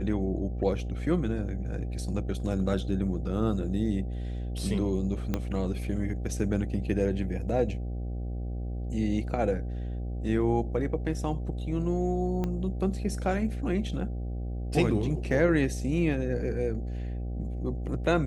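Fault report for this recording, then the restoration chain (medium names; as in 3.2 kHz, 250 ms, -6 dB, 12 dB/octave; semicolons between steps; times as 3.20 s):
buzz 60 Hz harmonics 13 -33 dBFS
5.34 s: pop -15 dBFS
12.44 s: pop -19 dBFS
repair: de-click; de-hum 60 Hz, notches 13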